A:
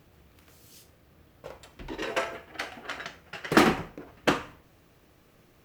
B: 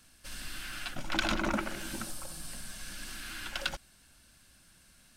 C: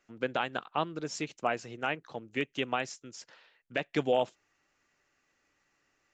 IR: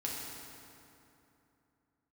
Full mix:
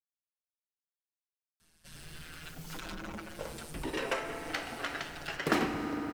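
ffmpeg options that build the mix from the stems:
-filter_complex "[0:a]adelay=1950,volume=0dB,asplit=2[a][b];[b]volume=-9dB[c];[1:a]asoftclip=type=tanh:threshold=-30.5dB,tremolo=f=160:d=0.857,asplit=2[d][e];[e]adelay=7,afreqshift=0.67[f];[d][f]amix=inputs=2:normalize=1,adelay=1600,volume=-0.5dB[g];[3:a]atrim=start_sample=2205[h];[c][h]afir=irnorm=-1:irlink=0[i];[a][g][i]amix=inputs=3:normalize=0,acompressor=threshold=-34dB:ratio=2"

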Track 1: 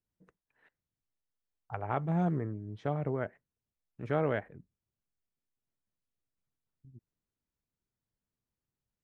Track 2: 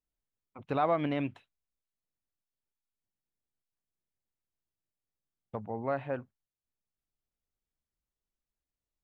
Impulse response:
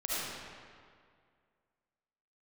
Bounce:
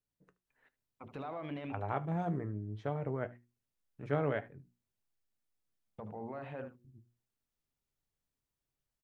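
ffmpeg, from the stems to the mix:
-filter_complex "[0:a]flanger=delay=7:depth=3:regen=67:speed=0.24:shape=sinusoidal,volume=1.5dB,asplit=3[a][b][c];[b]volume=-21dB[d];[1:a]bandreject=f=60:t=h:w=6,bandreject=f=120:t=h:w=6,bandreject=f=180:t=h:w=6,bandreject=f=240:t=h:w=6,bandreject=f=300:t=h:w=6,bandreject=f=360:t=h:w=6,bandreject=f=420:t=h:w=6,bandreject=f=480:t=h:w=6,bandreject=f=540:t=h:w=6,acompressor=threshold=-31dB:ratio=6,alimiter=level_in=8.5dB:limit=-24dB:level=0:latency=1:release=28,volume=-8.5dB,adelay=450,volume=-1dB,asplit=2[e][f];[f]volume=-11dB[g];[c]apad=whole_len=418122[h];[e][h]sidechaincompress=threshold=-48dB:ratio=8:attack=16:release=153[i];[d][g]amix=inputs=2:normalize=0,aecho=0:1:75:1[j];[a][i][j]amix=inputs=3:normalize=0,bandreject=f=60:t=h:w=6,bandreject=f=120:t=h:w=6,bandreject=f=180:t=h:w=6,bandreject=f=240:t=h:w=6,bandreject=f=300:t=h:w=6,bandreject=f=360:t=h:w=6"

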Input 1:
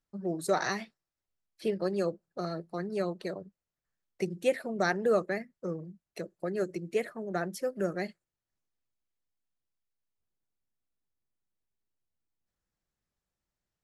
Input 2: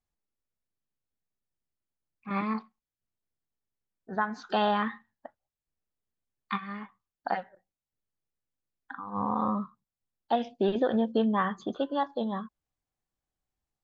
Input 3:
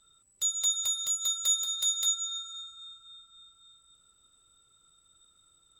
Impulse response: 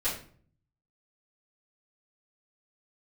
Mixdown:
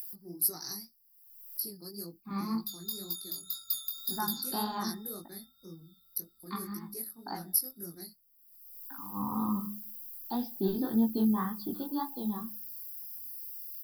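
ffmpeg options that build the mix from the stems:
-filter_complex "[0:a]acompressor=mode=upward:threshold=-40dB:ratio=2.5,aexciter=amount=11.6:drive=7.4:freq=5.7k,volume=-8dB[a];[1:a]bandreject=f=103.6:t=h:w=4,bandreject=f=207.2:t=h:w=4,bandreject=f=310.8:t=h:w=4,bandreject=f=414.4:t=h:w=4,bandreject=f=518:t=h:w=4,bandreject=f=621.6:t=h:w=4,bandreject=f=725.2:t=h:w=4,bandreject=f=828.8:t=h:w=4,volume=2.5dB[b];[2:a]aecho=1:1:5.1:0.45,adelay=2250,volume=-1dB[c];[a][b][c]amix=inputs=3:normalize=0,firequalizer=gain_entry='entry(330,0);entry(570,-20);entry(860,-5);entry(1600,-12);entry(2900,-19);entry(4800,14);entry(7000,-25);entry(12000,14)':delay=0.05:min_phase=1,flanger=delay=17.5:depth=6.3:speed=1.9"

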